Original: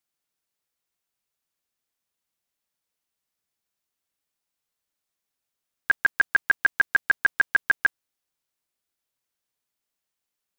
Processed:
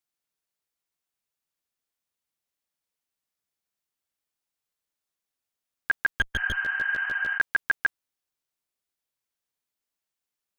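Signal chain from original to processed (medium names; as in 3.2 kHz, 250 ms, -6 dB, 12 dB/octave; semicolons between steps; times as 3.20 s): 6.08–6.60 s: comb filter that takes the minimum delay 6.2 ms; 6.38–7.35 s: spectral replace 680–3100 Hz before; trim -3.5 dB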